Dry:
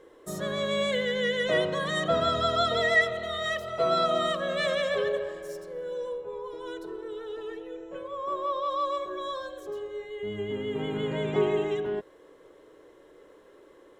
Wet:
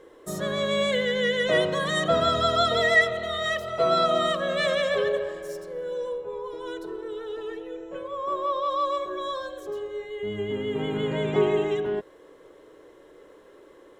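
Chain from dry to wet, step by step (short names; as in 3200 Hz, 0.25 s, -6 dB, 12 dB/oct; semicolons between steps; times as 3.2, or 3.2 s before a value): 1.53–3.03 high shelf 7600 Hz -> 11000 Hz +6 dB; gain +3 dB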